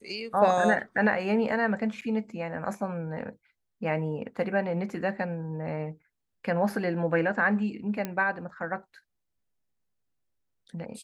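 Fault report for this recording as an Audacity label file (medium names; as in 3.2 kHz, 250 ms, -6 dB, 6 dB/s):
2.010000	2.020000	dropout 8.5 ms
8.050000	8.050000	pop -17 dBFS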